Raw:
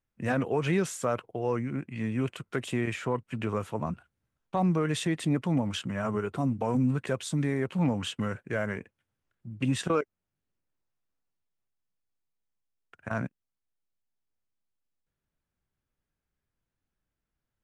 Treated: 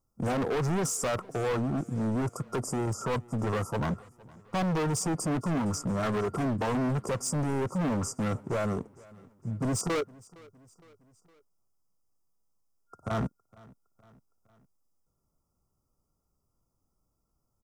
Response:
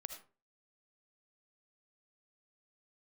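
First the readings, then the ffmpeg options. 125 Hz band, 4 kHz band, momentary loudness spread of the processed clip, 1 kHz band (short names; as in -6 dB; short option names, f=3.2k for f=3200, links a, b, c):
0.0 dB, -3.0 dB, 6 LU, +1.0 dB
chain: -af "afftfilt=real='re*(1-between(b*sr/4096,1400,4700))':imag='im*(1-between(b*sr/4096,1400,4700))':win_size=4096:overlap=0.75,volume=34.5dB,asoftclip=hard,volume=-34.5dB,aecho=1:1:462|924|1386:0.0668|0.0354|0.0188,volume=8dB"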